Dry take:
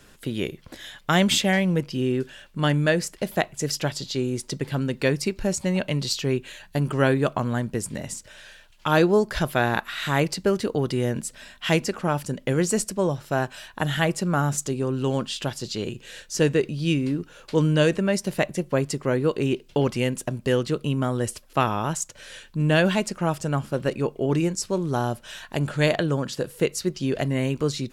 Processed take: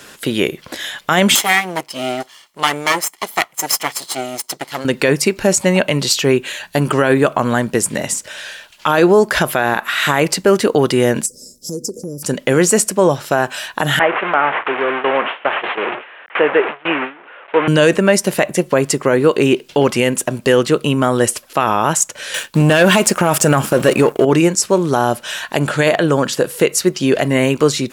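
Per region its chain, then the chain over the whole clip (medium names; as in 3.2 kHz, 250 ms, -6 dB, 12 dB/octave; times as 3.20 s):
1.35–4.85 s: comb filter that takes the minimum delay 0.96 ms + tone controls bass -12 dB, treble +4 dB + upward expansion, over -45 dBFS
11.26–12.23 s: Chebyshev band-stop 510–5100 Hz, order 5 + compression 5:1, threshold -33 dBFS
13.99–17.68 s: one-bit delta coder 16 kbps, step -23.5 dBFS + band-pass 490–2500 Hz + gate with hold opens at -24 dBFS, closes at -27 dBFS
22.34–24.25 s: treble shelf 7.6 kHz +6.5 dB + band-stop 2 kHz, Q 18 + waveshaping leveller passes 2
whole clip: dynamic bell 4.4 kHz, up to -6 dB, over -44 dBFS, Q 1.3; high-pass 440 Hz 6 dB/octave; loudness maximiser +17 dB; trim -1 dB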